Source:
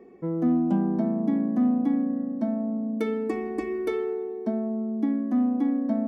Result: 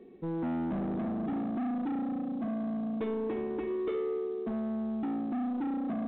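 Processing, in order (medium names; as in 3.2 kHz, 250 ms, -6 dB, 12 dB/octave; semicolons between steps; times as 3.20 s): peaking EQ 1.2 kHz -10 dB 2.1 oct; saturation -31.5 dBFS, distortion -7 dB; dynamic bell 480 Hz, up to +4 dB, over -50 dBFS, Q 1.4; µ-law 64 kbps 8 kHz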